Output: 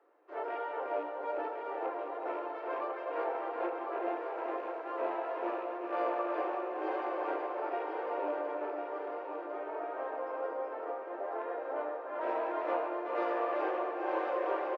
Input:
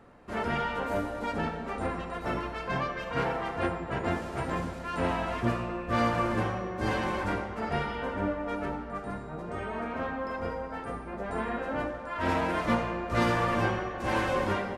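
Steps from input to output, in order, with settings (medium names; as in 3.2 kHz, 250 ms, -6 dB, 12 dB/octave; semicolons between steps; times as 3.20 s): rattle on loud lows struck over -32 dBFS, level -29 dBFS; steep high-pass 310 Hz 72 dB/octave; tape spacing loss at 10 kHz 35 dB; feedback delay 1051 ms, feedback 53%, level -6.5 dB; dynamic bell 660 Hz, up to +8 dB, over -46 dBFS, Q 0.89; delay 376 ms -5 dB; trim -8 dB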